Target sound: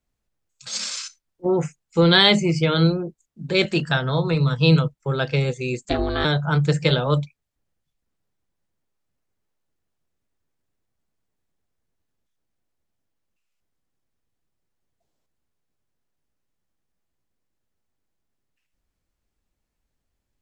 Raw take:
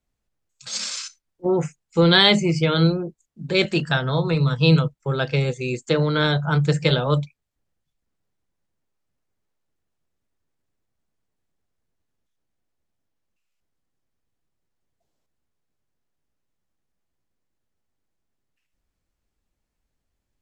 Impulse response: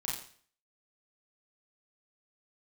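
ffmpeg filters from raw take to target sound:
-filter_complex "[0:a]asettb=1/sr,asplit=3[a][b][c];[a]atrim=end=5.854[d];[b]atrim=start=5.85:end=6.25,asetpts=PTS-STARTPTS,afade=t=in:d=0.004:c=qsin,afade=t=out:st=0.396:d=0.004:c=qsin,aeval=exprs='val(0)*sin(2*PI*200*n/s)':c=same[e];[c]atrim=start=6.246[f];[d][e]acrossfade=d=0.004:c1=hsin:c2=qsin[g];[g][f]acrossfade=d=0.004:c1=qsin:c2=hsin"

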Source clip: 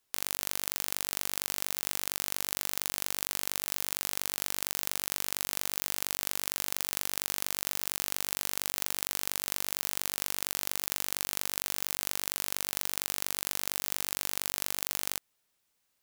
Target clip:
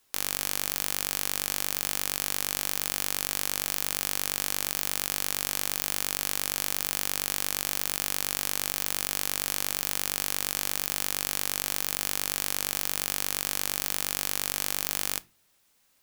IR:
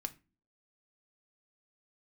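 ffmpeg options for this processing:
-filter_complex "[0:a]alimiter=limit=-11dB:level=0:latency=1:release=30,asplit=2[a][b];[1:a]atrim=start_sample=2205[c];[b][c]afir=irnorm=-1:irlink=0,volume=1dB[d];[a][d]amix=inputs=2:normalize=0,volume=4dB"

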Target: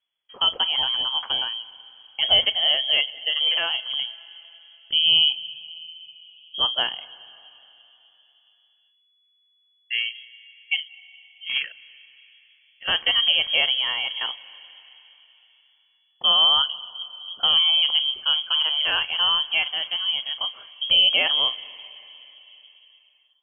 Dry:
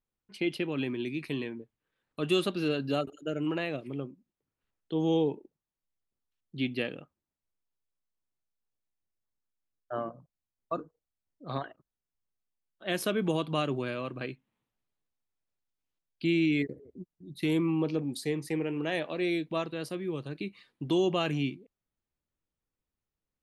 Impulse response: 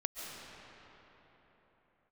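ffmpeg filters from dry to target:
-filter_complex "[0:a]asplit=2[a][b];[1:a]atrim=start_sample=2205,adelay=40[c];[b][c]afir=irnorm=-1:irlink=0,volume=-18.5dB[d];[a][d]amix=inputs=2:normalize=0,lowpass=f=2.9k:t=q:w=0.5098,lowpass=f=2.9k:t=q:w=0.6013,lowpass=f=2.9k:t=q:w=0.9,lowpass=f=2.9k:t=q:w=2.563,afreqshift=-3400,volume=8.5dB"

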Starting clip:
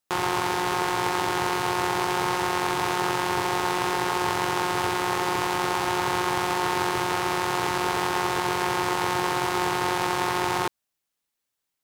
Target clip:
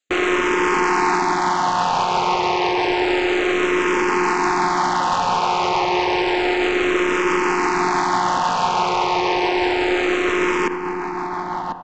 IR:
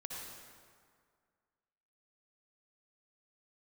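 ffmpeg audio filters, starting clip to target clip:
-filter_complex "[0:a]highpass=f=220:w=0.5412,highpass=f=220:w=1.3066,afwtdn=0.0282,aemphasis=mode=production:type=75kf,aresample=16000,asoftclip=type=hard:threshold=-24.5dB,aresample=44100,tremolo=f=6:d=0.32,asplit=2[a][b];[b]adelay=1044,lowpass=f=1.4k:p=1,volume=-11dB,asplit=2[c][d];[d]adelay=1044,lowpass=f=1.4k:p=1,volume=0.39,asplit=2[e][f];[f]adelay=1044,lowpass=f=1.4k:p=1,volume=0.39,asplit=2[g][h];[h]adelay=1044,lowpass=f=1.4k:p=1,volume=0.39[i];[c][e][g][i]amix=inputs=4:normalize=0[j];[a][j]amix=inputs=2:normalize=0,alimiter=level_in=28.5dB:limit=-1dB:release=50:level=0:latency=1,asplit=2[k][l];[l]afreqshift=-0.3[m];[k][m]amix=inputs=2:normalize=1,volume=-8.5dB"

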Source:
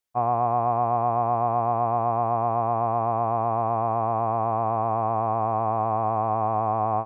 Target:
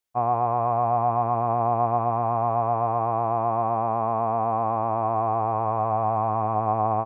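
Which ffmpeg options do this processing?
-af "aecho=1:1:137:0.251"

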